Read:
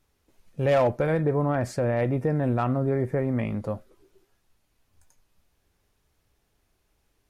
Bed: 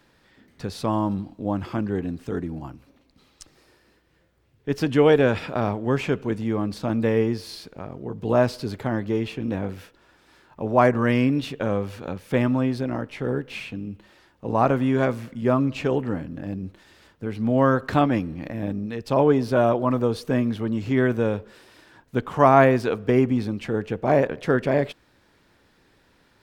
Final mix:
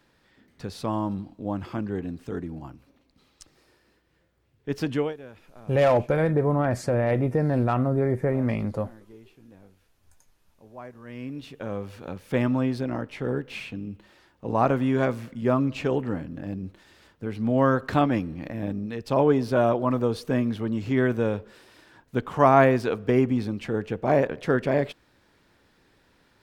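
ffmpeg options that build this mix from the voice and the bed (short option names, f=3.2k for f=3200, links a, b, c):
-filter_complex "[0:a]adelay=5100,volume=1.5dB[a];[1:a]volume=18.5dB,afade=t=out:st=4.91:d=0.23:silence=0.0944061,afade=t=in:st=11.03:d=1.46:silence=0.0749894[b];[a][b]amix=inputs=2:normalize=0"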